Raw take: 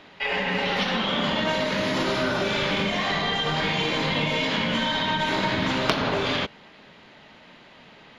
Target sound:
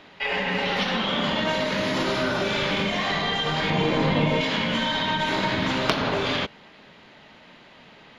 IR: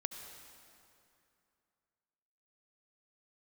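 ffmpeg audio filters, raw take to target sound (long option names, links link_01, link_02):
-filter_complex "[0:a]asettb=1/sr,asplit=3[link_01][link_02][link_03];[link_01]atrim=end=3.704[link_04];[link_02]atrim=start=3.7:end=4.41,asetpts=PTS-STARTPTS,afade=type=in:duration=0.004:curve=qsin,afade=type=out:start_time=0.706:duration=0.004:curve=qsin,tiltshelf=frequency=1500:gain=6[link_05];[link_03]atrim=start=4.406[link_06];[link_04][link_05]acrossfade=duration=0.004:curve1=hsin:curve2=qsin[link_07];[link_07][link_06]acrossfade=duration=0.004:curve1=qsin:curve2=hsin"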